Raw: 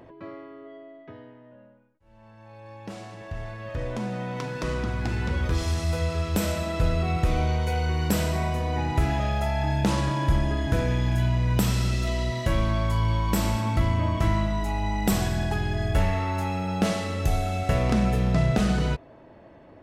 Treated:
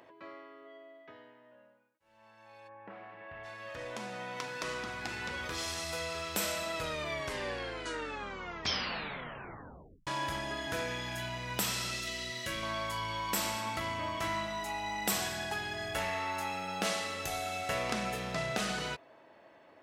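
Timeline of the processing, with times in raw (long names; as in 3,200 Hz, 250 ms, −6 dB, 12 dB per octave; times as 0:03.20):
0:02.67–0:03.43: low-pass filter 1,700 Hz → 2,800 Hz 24 dB per octave
0:06.74: tape stop 3.33 s
0:12.00–0:12.63: parametric band 830 Hz −13.5 dB
whole clip: high-pass filter 1,300 Hz 6 dB per octave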